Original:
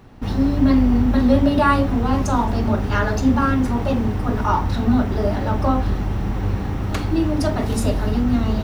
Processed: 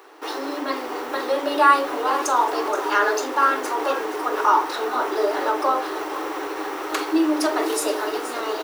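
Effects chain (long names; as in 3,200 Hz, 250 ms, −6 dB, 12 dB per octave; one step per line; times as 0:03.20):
high-shelf EQ 5,200 Hz +8 dB
mains-hum notches 60/120/180/240/300/360/420/480 Hz
in parallel at +2.5 dB: brickwall limiter −15 dBFS, peak gain reduction 11 dB
on the sum: Chebyshev high-pass with heavy ripple 300 Hz, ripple 6 dB
on a send: single-tap delay 495 ms −17.5 dB
on the sum: feedback echo at a low word length 474 ms, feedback 35%, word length 6 bits, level −12.5 dB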